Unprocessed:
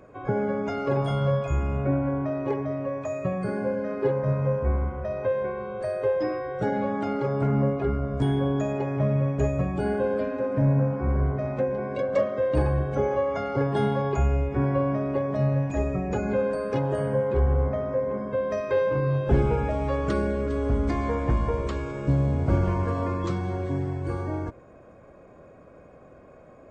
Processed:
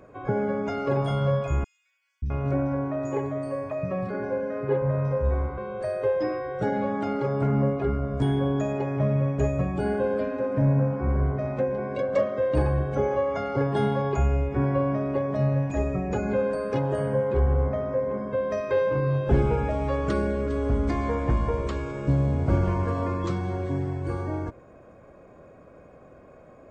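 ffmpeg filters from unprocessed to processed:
-filter_complex "[0:a]asettb=1/sr,asplit=3[s0][s1][s2];[s0]atrim=end=1.644[s3];[s1]atrim=start=1.64:end=5.58,asetpts=PTS-STARTPTS,afade=t=in:d=0.004:c=qsin,afade=t=out:st=3.936:d=0.004:c=qsin,acrossover=split=220|3900[s4][s5][s6];[s4]adelay=580[s7];[s5]adelay=660[s8];[s7][s8][s6]amix=inputs=3:normalize=0,atrim=end_sample=173754[s9];[s2]atrim=start=5.576[s10];[s3][s9]acrossfade=d=0.004:c1=hsin:c2=qsin[s11];[s11][s10]acrossfade=d=0.004:c1=qsin:c2=hsin"

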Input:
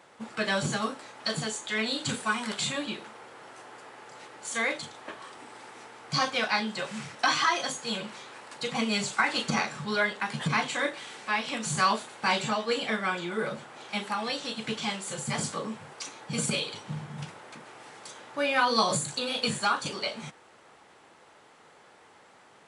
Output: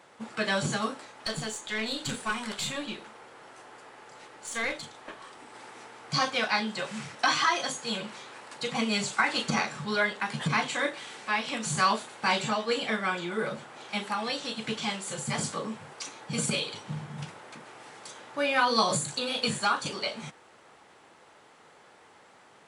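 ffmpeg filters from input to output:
-filter_complex "[0:a]asettb=1/sr,asplit=3[s0][s1][s2];[s0]atrim=end=1.054[s3];[s1]atrim=start=1.05:end=5.54,asetpts=PTS-STARTPTS,afade=t=in:d=0.004:c=qsin,afade=t=out:st=4.486:d=0.004:c=qsin,aeval=exprs='(tanh(10*val(0)+0.5)-tanh(0.5))/10':c=same[s4];[s2]atrim=start=5.536[s5];[s3][s4]acrossfade=d=0.004:c1=hsin:c2=qsin[s6];[s6][s5]acrossfade=d=0.004:c1=qsin:c2=hsin"

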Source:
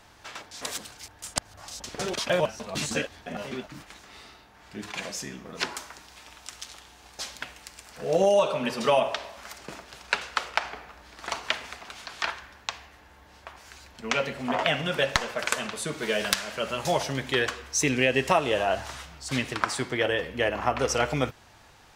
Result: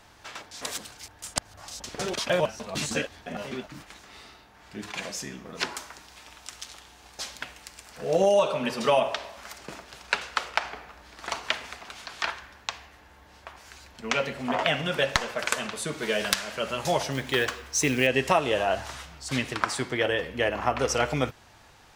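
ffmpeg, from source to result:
-filter_complex "[0:a]asettb=1/sr,asplit=3[s0][s1][s2];[s0]atrim=end=17.124[s3];[s1]atrim=start=17.12:end=18.07,asetpts=PTS-STARTPTS,afade=t=in:d=0.004:c=qsin,afade=t=out:st=0.946:d=0.004:c=qsin,acrusher=bits=5:mode=log:mix=0:aa=0.000001[s4];[s2]atrim=start=18.066[s5];[s3][s4]acrossfade=d=0.004:c1=hsin:c2=qsin[s6];[s6][s5]acrossfade=d=0.004:c1=qsin:c2=hsin"

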